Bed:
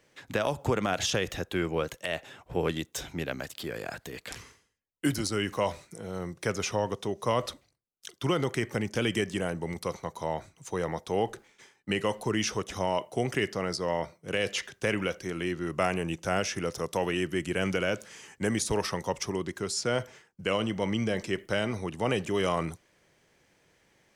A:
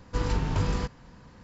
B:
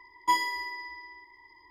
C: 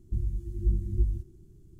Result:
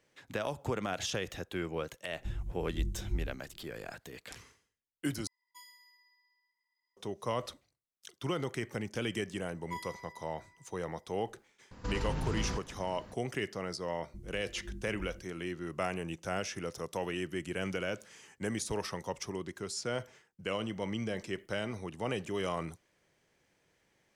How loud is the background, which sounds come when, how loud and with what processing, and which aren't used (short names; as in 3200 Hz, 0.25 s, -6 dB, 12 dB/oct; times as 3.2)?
bed -7 dB
2.13 add C -6 dB + bell 75 Hz -6.5 dB 0.78 oct
5.27 replace with B -17.5 dB + differentiator
9.43 add B -17 dB + bell 5200 Hz -5 dB
11.71 add A -0.5 dB + limiter -26 dBFS
14.02 add C -9.5 dB + resonant low shelf 150 Hz -9 dB, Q 1.5